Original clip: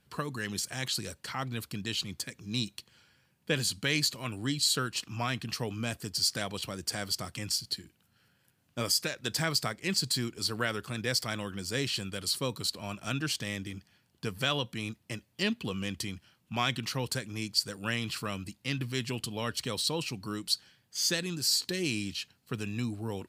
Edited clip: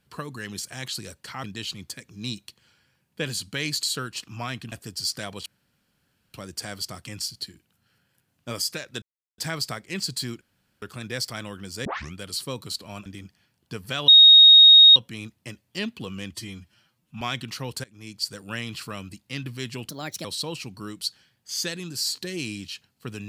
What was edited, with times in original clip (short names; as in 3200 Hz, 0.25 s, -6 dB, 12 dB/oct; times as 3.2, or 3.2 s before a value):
1.44–1.74 cut
4.13–4.63 cut
5.52–5.9 cut
6.64 insert room tone 0.88 s
9.32 insert silence 0.36 s
10.35–10.76 room tone
11.79 tape start 0.29 s
13–13.58 cut
14.6 add tone 3740 Hz -7.5 dBFS 0.88 s
15.98–16.56 stretch 1.5×
17.19–17.63 fade in, from -19.5 dB
19.24–19.71 speed 132%